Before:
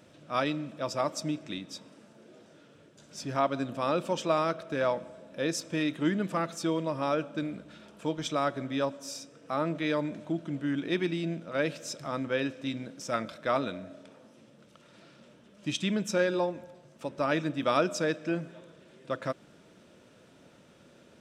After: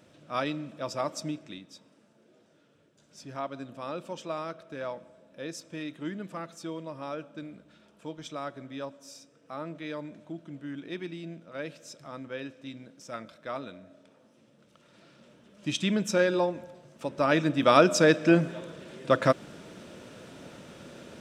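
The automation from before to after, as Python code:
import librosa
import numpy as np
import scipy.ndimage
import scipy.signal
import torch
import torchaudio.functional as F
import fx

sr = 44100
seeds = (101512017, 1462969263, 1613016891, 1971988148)

y = fx.gain(x, sr, db=fx.line((1.26, -1.5), (1.69, -8.0), (13.86, -8.0), (15.9, 2.5), (17.05, 2.5), (18.33, 10.5)))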